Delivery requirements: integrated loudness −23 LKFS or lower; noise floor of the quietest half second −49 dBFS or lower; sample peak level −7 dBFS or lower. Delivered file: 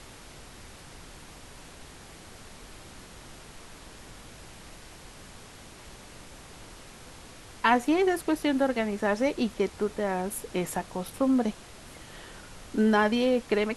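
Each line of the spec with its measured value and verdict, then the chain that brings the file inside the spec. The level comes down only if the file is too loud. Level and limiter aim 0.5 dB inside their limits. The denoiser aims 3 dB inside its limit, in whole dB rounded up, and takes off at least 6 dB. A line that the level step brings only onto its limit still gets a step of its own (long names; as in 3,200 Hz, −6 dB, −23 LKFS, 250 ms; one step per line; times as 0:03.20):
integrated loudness −27.0 LKFS: in spec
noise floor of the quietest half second −48 dBFS: out of spec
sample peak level −8.5 dBFS: in spec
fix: broadband denoise 6 dB, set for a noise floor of −48 dBFS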